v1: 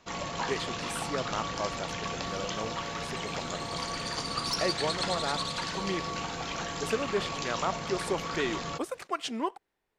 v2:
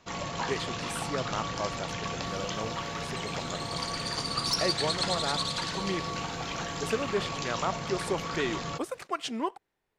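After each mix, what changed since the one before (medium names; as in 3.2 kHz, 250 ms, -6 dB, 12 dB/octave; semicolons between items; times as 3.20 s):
second sound +3.5 dB; master: add peaking EQ 120 Hz +4.5 dB 0.87 oct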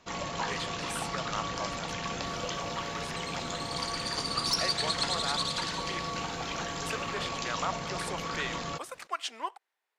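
speech: add high-pass 810 Hz 12 dB/octave; master: add peaking EQ 120 Hz -4.5 dB 0.87 oct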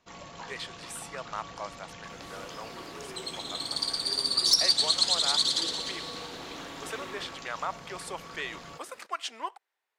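first sound -10.0 dB; second sound +7.5 dB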